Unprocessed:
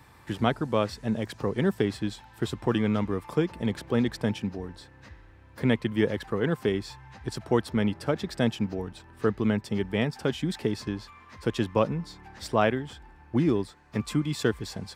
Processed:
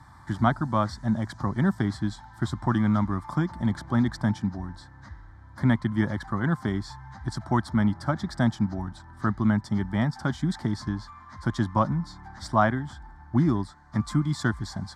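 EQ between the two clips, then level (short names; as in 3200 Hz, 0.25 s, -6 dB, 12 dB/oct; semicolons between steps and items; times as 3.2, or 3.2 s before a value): air absorption 65 m; fixed phaser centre 1100 Hz, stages 4; +6.0 dB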